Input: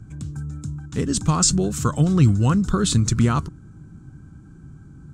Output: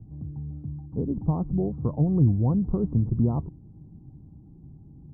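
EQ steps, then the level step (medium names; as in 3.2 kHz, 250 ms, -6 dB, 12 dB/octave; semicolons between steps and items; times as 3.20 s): steep low-pass 890 Hz 48 dB/octave; -4.5 dB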